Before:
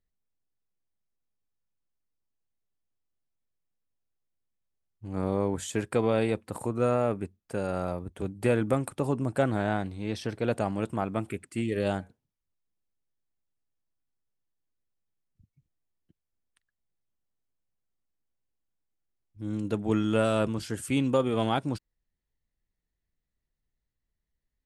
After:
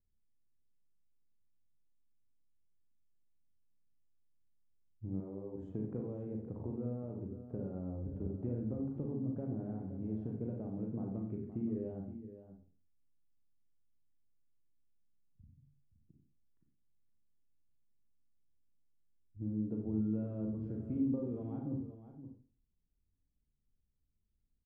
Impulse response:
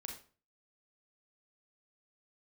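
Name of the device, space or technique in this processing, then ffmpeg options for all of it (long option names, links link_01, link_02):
television next door: -filter_complex "[0:a]acompressor=threshold=-35dB:ratio=5,lowpass=330[link_01];[1:a]atrim=start_sample=2205[link_02];[link_01][link_02]afir=irnorm=-1:irlink=0,asettb=1/sr,asplit=3[link_03][link_04][link_05];[link_03]atrim=end=5.204[link_06];[link_04]atrim=start=5.2:end=5.69,asetpts=PTS-STARTPTS,afade=type=in:duration=0.004:curve=qsin,afade=type=out:start_time=0.486:duration=0.004:curve=qsin,bass=frequency=250:gain=-7,treble=frequency=4000:gain=9[link_07];[link_05]atrim=start=5.686[link_08];[link_06][link_07]acrossfade=duration=0.004:curve1=hsin:curve2=qsin[link_09];[link_09][link_08]acrossfade=duration=0.004:curve1=qsin:curve2=hsin,aecho=1:1:92|521:0.282|0.266,volume=5dB"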